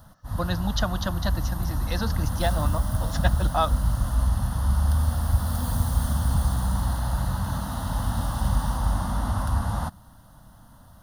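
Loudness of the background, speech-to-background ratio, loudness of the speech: -26.5 LUFS, -4.0 dB, -30.5 LUFS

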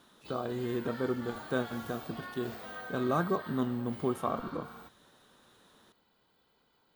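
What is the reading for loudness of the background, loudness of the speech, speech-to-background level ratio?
-45.0 LUFS, -35.0 LUFS, 10.0 dB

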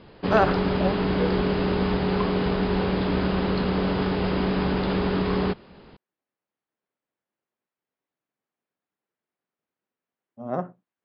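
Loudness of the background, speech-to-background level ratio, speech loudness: -24.5 LUFS, -3.0 dB, -27.5 LUFS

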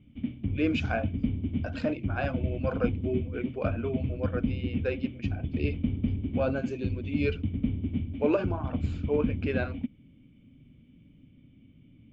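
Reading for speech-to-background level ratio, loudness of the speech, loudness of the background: -0.5 dB, -33.0 LUFS, -32.5 LUFS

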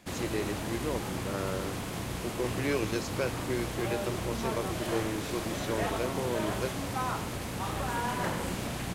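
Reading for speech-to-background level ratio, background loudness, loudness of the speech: -1.5 dB, -34.5 LUFS, -36.0 LUFS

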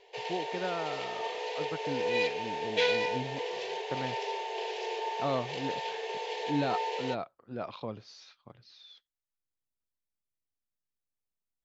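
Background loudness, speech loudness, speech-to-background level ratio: -34.0 LUFS, -38.5 LUFS, -4.5 dB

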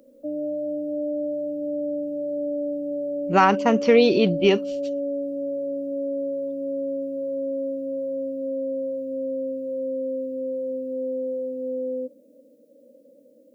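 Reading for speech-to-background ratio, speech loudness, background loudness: 9.5 dB, -19.0 LUFS, -28.5 LUFS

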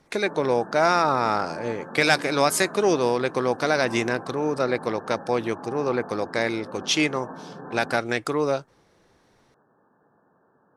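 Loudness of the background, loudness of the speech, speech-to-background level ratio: -39.5 LUFS, -24.0 LUFS, 15.5 dB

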